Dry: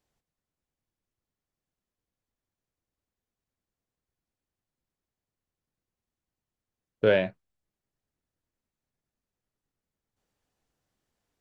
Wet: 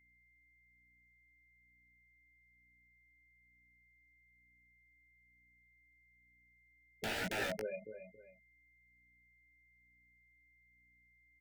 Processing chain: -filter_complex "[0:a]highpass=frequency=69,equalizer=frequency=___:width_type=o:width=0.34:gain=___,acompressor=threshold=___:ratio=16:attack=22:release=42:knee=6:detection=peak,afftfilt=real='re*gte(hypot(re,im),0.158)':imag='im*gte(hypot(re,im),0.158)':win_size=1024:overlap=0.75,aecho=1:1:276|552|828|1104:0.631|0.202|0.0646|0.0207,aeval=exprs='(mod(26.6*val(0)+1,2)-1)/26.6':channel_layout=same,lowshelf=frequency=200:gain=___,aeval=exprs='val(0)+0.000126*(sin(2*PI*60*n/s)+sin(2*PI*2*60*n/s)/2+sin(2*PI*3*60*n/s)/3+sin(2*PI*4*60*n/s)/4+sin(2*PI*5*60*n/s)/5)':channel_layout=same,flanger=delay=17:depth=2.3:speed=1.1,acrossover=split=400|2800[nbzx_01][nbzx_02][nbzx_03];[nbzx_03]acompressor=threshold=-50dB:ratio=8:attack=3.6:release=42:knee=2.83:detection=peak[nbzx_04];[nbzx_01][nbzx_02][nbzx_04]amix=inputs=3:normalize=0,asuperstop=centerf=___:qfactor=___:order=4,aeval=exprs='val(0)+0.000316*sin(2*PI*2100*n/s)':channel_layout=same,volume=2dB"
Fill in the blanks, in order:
2400, 7.5, -24dB, -2.5, 1100, 2.4